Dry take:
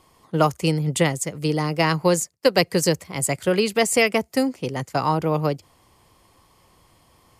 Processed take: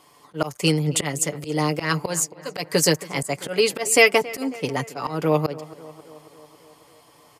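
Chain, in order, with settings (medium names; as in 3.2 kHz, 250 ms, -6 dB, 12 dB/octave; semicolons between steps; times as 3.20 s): high-pass 320 Hz 6 dB/octave; comb 6.9 ms, depth 55%; slow attack 168 ms; tape echo 273 ms, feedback 70%, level -17 dB, low-pass 2.2 kHz; trim +3.5 dB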